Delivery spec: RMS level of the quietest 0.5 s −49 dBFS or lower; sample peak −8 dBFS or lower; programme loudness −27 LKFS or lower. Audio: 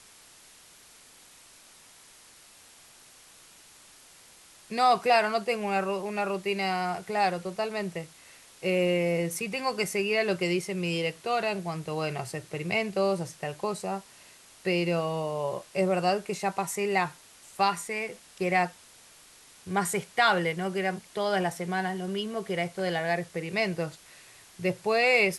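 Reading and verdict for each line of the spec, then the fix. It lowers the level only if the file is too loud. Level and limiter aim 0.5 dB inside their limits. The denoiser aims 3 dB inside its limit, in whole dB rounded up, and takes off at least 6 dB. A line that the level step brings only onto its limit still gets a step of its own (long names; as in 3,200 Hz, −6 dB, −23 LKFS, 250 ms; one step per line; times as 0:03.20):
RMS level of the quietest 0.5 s −54 dBFS: in spec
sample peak −10.5 dBFS: in spec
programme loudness −28.5 LKFS: in spec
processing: no processing needed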